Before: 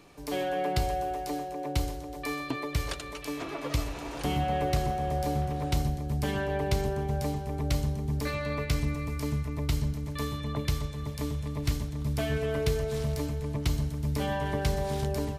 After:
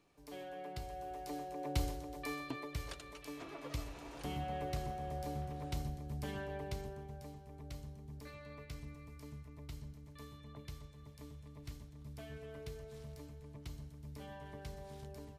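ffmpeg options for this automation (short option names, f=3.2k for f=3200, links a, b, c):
-af "volume=-5.5dB,afade=t=in:st=0.89:d=0.97:silence=0.266073,afade=t=out:st=1.86:d=0.9:silence=0.473151,afade=t=out:st=6.37:d=0.81:silence=0.421697"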